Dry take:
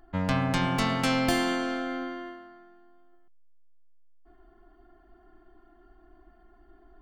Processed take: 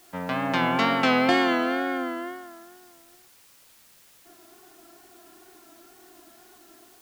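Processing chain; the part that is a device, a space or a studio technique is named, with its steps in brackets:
dictaphone (band-pass filter 260–3,400 Hz; automatic gain control gain up to 6.5 dB; tape wow and flutter 68 cents; white noise bed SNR 27 dB)

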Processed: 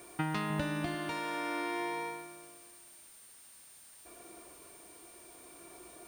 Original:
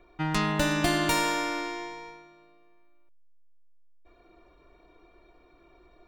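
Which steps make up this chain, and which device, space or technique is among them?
medium wave at night (band-pass filter 110–3,500 Hz; downward compressor, threshold −36 dBFS, peak gain reduction 13.5 dB; amplitude tremolo 0.5 Hz, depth 43%; steady tone 9,000 Hz −61 dBFS; white noise bed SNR 19 dB)
0:00.50–0:00.95: low-shelf EQ 130 Hz +11.5 dB
level +5.5 dB

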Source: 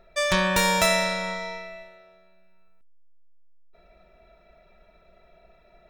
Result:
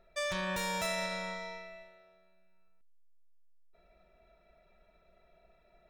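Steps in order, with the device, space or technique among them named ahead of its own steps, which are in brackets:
soft clipper into limiter (soft clipping −12 dBFS, distortion −21 dB; brickwall limiter −18 dBFS, peak gain reduction 5.5 dB)
level −9 dB

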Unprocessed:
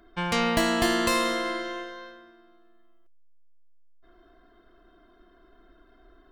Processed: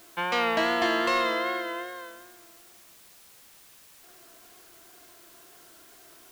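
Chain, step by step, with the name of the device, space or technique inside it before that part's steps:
tape answering machine (band-pass filter 390–3,300 Hz; soft clipping −18 dBFS, distortion −20 dB; tape wow and flutter; white noise bed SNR 22 dB)
level +2.5 dB

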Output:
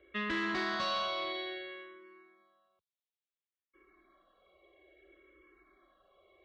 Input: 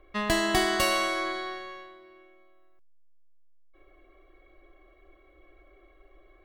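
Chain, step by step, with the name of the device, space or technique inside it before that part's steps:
barber-pole phaser into a guitar amplifier (frequency shifter mixed with the dry sound −0.59 Hz; soft clipping −28 dBFS, distortion −11 dB; loudspeaker in its box 100–4,200 Hz, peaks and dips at 130 Hz −9 dB, 290 Hz −4 dB, 760 Hz −7 dB, 3,600 Hz +5 dB)

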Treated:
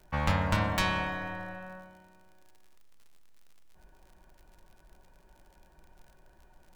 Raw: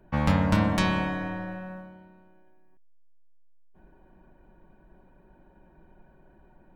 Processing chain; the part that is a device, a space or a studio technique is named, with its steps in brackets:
parametric band 240 Hz −11 dB 1.9 octaves
record under a worn stylus (stylus tracing distortion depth 0.086 ms; surface crackle 72 per second −48 dBFS; pink noise bed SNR 40 dB)

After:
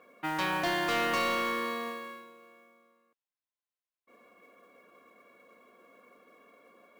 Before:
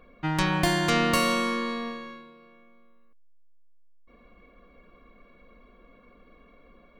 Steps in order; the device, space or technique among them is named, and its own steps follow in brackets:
carbon microphone (band-pass filter 360–3,500 Hz; soft clipping −24 dBFS, distortion −12 dB; noise that follows the level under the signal 20 dB)

